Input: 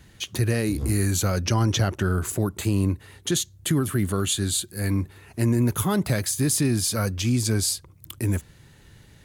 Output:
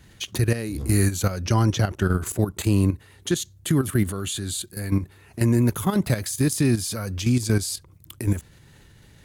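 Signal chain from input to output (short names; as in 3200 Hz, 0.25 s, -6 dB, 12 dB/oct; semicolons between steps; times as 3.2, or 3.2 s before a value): level quantiser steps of 11 dB; gain +4 dB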